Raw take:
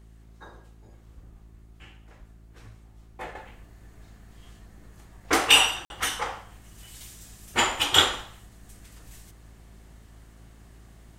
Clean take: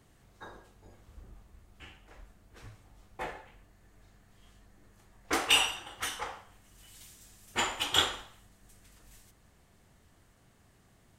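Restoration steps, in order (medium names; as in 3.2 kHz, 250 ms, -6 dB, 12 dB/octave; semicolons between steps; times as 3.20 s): de-hum 55 Hz, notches 7; interpolate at 5.85 s, 51 ms; gain correction -7.5 dB, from 3.35 s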